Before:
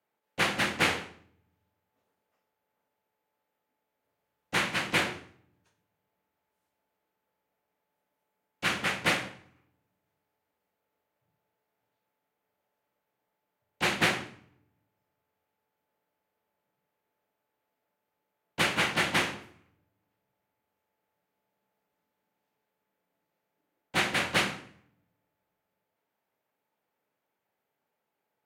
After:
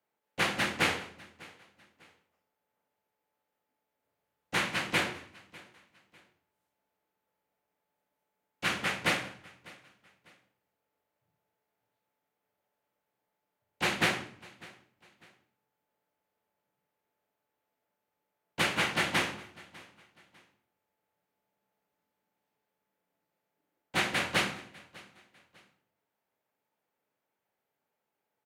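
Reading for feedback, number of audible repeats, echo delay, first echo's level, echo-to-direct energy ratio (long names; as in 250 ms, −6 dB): 34%, 2, 599 ms, −22.5 dB, −22.0 dB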